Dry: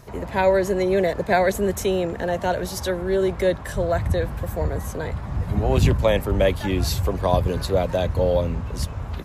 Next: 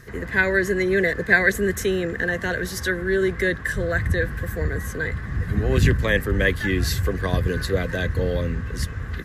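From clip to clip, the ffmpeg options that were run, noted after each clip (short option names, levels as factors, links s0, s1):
-af "superequalizer=8b=0.316:9b=0.282:11b=3.55"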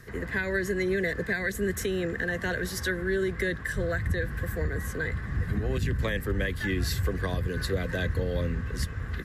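-filter_complex "[0:a]acrossover=split=270|3000[s0][s1][s2];[s1]acompressor=threshold=0.0562:ratio=2[s3];[s0][s3][s2]amix=inputs=3:normalize=0,alimiter=limit=0.178:level=0:latency=1:release=176,bandreject=f=6300:w=23,volume=0.668"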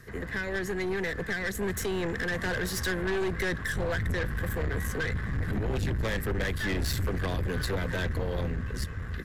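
-af "dynaudnorm=f=510:g=7:m=1.78,aeval=exprs='(tanh(20*val(0)+0.4)-tanh(0.4))/20':c=same"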